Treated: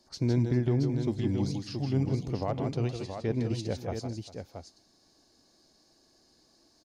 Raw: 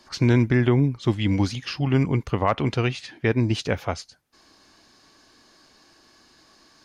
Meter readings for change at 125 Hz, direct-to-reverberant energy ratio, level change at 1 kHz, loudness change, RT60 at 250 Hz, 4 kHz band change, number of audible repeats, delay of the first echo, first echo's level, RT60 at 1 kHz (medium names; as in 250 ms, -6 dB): -6.5 dB, no reverb, -11.5 dB, -7.5 dB, no reverb, -10.5 dB, 3, 158 ms, -7.0 dB, no reverb